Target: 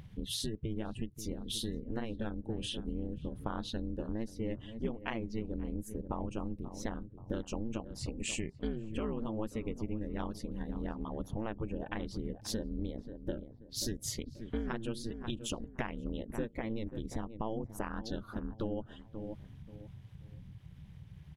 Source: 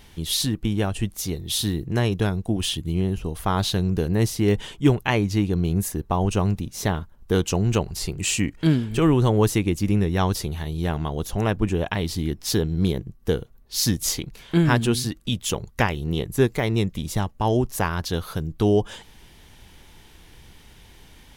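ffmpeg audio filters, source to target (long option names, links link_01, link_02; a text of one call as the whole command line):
ffmpeg -i in.wav -filter_complex "[0:a]afftdn=noise_reduction=17:noise_floor=-35,acompressor=mode=upward:threshold=-34dB:ratio=2.5,bass=frequency=250:gain=1,treble=frequency=4000:gain=-8,asplit=2[link_01][link_02];[link_02]adelay=533,lowpass=frequency=1200:poles=1,volume=-16dB,asplit=2[link_03][link_04];[link_04]adelay=533,lowpass=frequency=1200:poles=1,volume=0.29,asplit=2[link_05][link_06];[link_06]adelay=533,lowpass=frequency=1200:poles=1,volume=0.29[link_07];[link_01][link_03][link_05][link_07]amix=inputs=4:normalize=0,aeval=exprs='val(0)*sin(2*PI*110*n/s)':channel_layout=same,acompressor=threshold=-28dB:ratio=5,adynamicequalizer=threshold=0.002:dfrequency=8400:dqfactor=1.2:tfrequency=8400:tqfactor=1.2:attack=5:release=100:ratio=0.375:range=2.5:mode=boostabove:tftype=bell,volume=-5dB" out.wav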